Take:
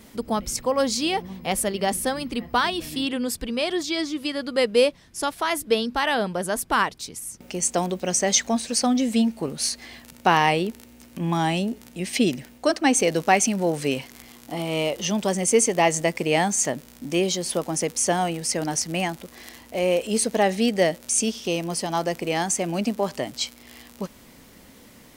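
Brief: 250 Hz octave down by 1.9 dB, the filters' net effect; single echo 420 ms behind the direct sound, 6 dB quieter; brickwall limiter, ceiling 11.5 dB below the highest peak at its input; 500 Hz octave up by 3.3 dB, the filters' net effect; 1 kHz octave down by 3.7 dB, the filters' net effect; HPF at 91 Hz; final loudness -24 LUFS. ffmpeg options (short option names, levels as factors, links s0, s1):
-af "highpass=91,equalizer=f=250:t=o:g=-4,equalizer=f=500:t=o:g=7,equalizer=f=1000:t=o:g=-8.5,alimiter=limit=0.168:level=0:latency=1,aecho=1:1:420:0.501,volume=1.19"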